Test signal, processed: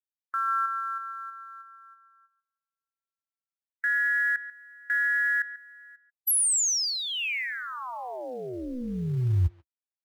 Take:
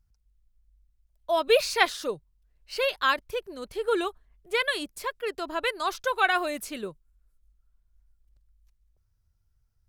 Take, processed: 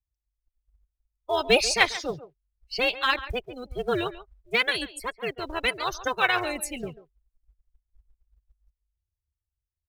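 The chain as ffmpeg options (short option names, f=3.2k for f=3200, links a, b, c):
-filter_complex "[0:a]afftdn=nr=29:nf=-38,equalizer=f=70:t=o:w=1.7:g=13.5,acrossover=split=120|2600[a][b][c];[a]dynaudnorm=f=160:g=11:m=6dB[d];[b]tremolo=f=250:d=0.788[e];[d][e][c]amix=inputs=3:normalize=0,aexciter=amount=1.5:drive=6.4:freq=2k,asplit=2[f][g];[g]acrusher=bits=4:mode=log:mix=0:aa=0.000001,volume=-11.5dB[h];[f][h]amix=inputs=2:normalize=0,asplit=2[i][j];[j]adelay=140,highpass=300,lowpass=3.4k,asoftclip=type=hard:threshold=-11dB,volume=-14dB[k];[i][k]amix=inputs=2:normalize=0"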